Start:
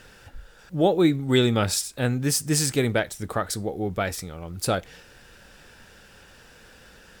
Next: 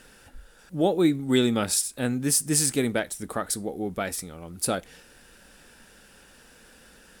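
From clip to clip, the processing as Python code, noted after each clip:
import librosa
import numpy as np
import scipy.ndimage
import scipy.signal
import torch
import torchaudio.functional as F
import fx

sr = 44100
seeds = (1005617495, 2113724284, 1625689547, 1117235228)

y = fx.graphic_eq_15(x, sr, hz=(100, 250, 10000), db=(-8, 5, 10))
y = F.gain(torch.from_numpy(y), -3.5).numpy()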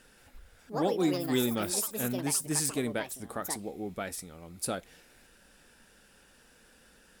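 y = fx.echo_pitch(x, sr, ms=176, semitones=6, count=3, db_per_echo=-6.0)
y = F.gain(torch.from_numpy(y), -7.0).numpy()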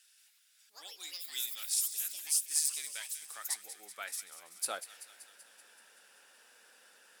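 y = fx.echo_wet_highpass(x, sr, ms=191, feedback_pct=65, hz=2200.0, wet_db=-12.0)
y = fx.filter_sweep_highpass(y, sr, from_hz=3500.0, to_hz=620.0, start_s=2.58, end_s=5.26, q=0.76)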